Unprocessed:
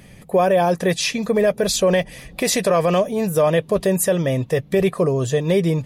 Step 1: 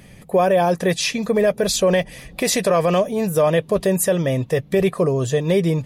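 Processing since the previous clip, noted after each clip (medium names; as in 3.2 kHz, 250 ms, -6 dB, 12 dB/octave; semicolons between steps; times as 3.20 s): no audible change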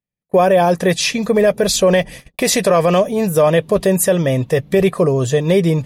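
gate -35 dBFS, range -50 dB; trim +4 dB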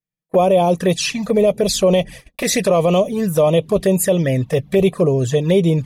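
touch-sensitive flanger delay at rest 6.3 ms, full sweep at -10.5 dBFS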